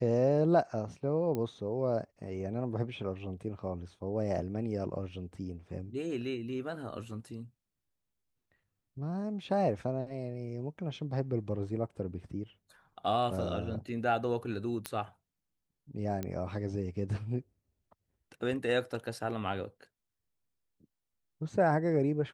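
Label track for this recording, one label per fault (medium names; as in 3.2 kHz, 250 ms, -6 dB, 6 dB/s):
1.350000	1.350000	pop -22 dBFS
14.860000	14.860000	pop -18 dBFS
16.230000	16.230000	pop -22 dBFS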